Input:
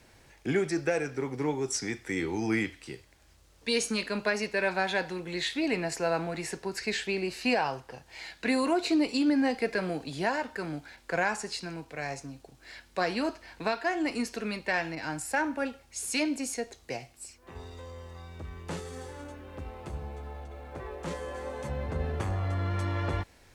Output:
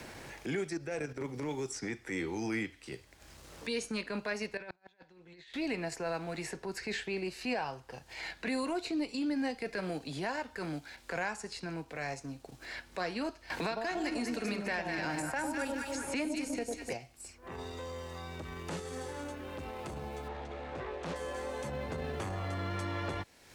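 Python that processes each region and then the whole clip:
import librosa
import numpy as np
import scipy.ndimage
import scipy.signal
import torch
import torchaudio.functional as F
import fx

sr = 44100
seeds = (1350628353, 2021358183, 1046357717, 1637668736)

y = fx.chain(x, sr, fx.low_shelf(hz=500.0, db=4.5),
    fx.level_steps(step_db=10),
    fx.transient(attack_db=-5, sustain_db=2), at=(0.77, 1.49))
y = fx.chain(y, sr, fx.lowpass(hz=6000.0, slope=12),
    fx.over_compress(threshold_db=-37.0, ratio=-1.0),
    fx.gate_flip(shuts_db=-28.0, range_db=-34), at=(4.57, 5.54))
y = fx.chain(y, sr, fx.echo_alternate(ms=100, hz=960.0, feedback_pct=61, wet_db=-3.0),
    fx.band_squash(depth_pct=100), at=(13.5, 16.93))
y = fx.chain(y, sr, fx.air_absorb(metres=97.0),
    fx.doppler_dist(depth_ms=0.42), at=(20.28, 21.16))
y = fx.transient(y, sr, attack_db=-8, sustain_db=-4)
y = fx.band_squash(y, sr, depth_pct=70)
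y = F.gain(torch.from_numpy(y), -4.5).numpy()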